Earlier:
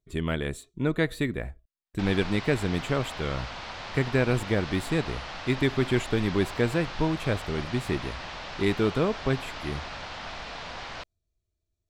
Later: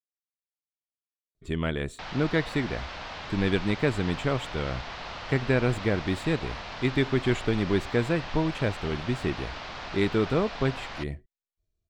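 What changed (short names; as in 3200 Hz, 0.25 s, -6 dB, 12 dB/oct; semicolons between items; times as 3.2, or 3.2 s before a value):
speech: entry +1.35 s; master: add bell 12000 Hz -13 dB 0.7 oct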